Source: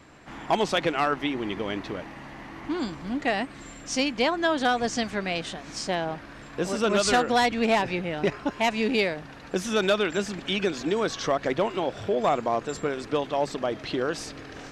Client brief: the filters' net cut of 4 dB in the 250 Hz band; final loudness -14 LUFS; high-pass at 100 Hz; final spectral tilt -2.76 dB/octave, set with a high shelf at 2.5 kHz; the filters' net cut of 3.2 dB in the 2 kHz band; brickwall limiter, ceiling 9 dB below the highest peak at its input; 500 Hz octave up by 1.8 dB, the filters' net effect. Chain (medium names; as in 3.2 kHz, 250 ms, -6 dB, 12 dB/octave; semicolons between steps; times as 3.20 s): high-pass 100 Hz; peaking EQ 250 Hz -6.5 dB; peaking EQ 500 Hz +4 dB; peaking EQ 2 kHz -8.5 dB; treble shelf 2.5 kHz +8 dB; trim +15 dB; peak limiter -2.5 dBFS